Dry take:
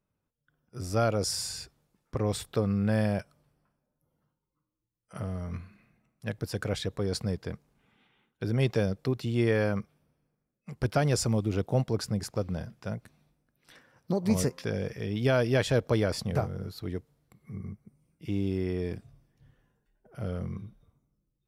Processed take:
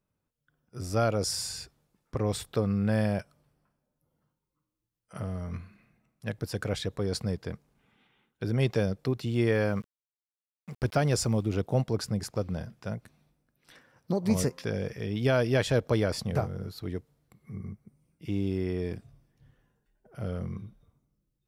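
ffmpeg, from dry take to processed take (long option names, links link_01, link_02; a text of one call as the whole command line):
ffmpeg -i in.wav -filter_complex "[0:a]asettb=1/sr,asplit=3[link_01][link_02][link_03];[link_01]atrim=end=9.324[link_04];[link_02]atrim=start=9.32:end=11.43,asetpts=PTS-STARTPTS,afade=type=in:duration=0.004:curve=qsin,afade=type=out:start_time=2.106:duration=0.004:curve=qsin,aeval=exprs='val(0)*gte(abs(val(0)),0.00266)':channel_layout=same[link_05];[link_03]atrim=start=11.426[link_06];[link_04][link_05]acrossfade=duration=0.004:curve1=hsin:curve2=qsin[link_07];[link_07][link_06]acrossfade=duration=0.004:curve1=qsin:curve2=hsin" out.wav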